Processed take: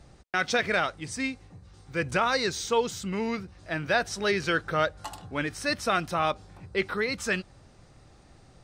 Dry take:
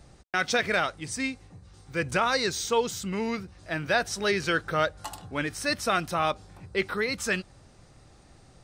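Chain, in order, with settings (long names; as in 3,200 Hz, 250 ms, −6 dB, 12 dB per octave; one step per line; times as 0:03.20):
high-shelf EQ 8,500 Hz −7.5 dB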